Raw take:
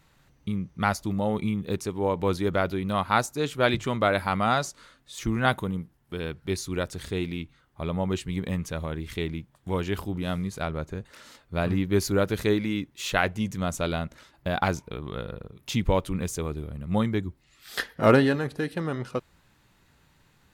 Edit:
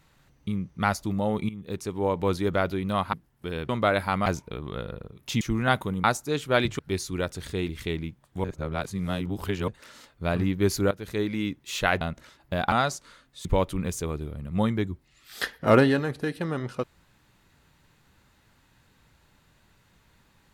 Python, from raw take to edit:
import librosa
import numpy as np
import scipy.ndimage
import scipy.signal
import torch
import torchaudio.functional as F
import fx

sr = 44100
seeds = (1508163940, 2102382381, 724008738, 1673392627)

y = fx.edit(x, sr, fx.fade_in_from(start_s=1.49, length_s=0.48, floor_db=-14.5),
    fx.swap(start_s=3.13, length_s=0.75, other_s=5.81, other_length_s=0.56),
    fx.swap(start_s=4.45, length_s=0.73, other_s=14.66, other_length_s=1.15),
    fx.cut(start_s=7.27, length_s=1.73),
    fx.reverse_span(start_s=9.75, length_s=1.24),
    fx.fade_in_from(start_s=12.22, length_s=0.53, floor_db=-17.0),
    fx.cut(start_s=13.32, length_s=0.63), tone=tone)